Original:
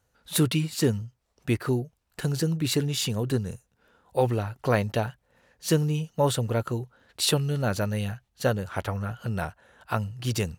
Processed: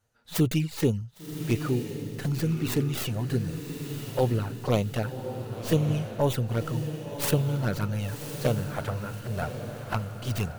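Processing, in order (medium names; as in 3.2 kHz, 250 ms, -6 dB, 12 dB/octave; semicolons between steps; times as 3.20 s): tracing distortion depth 0.45 ms; touch-sensitive flanger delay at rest 8.7 ms, full sweep at -19 dBFS; echo that smears into a reverb 1093 ms, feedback 40%, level -7.5 dB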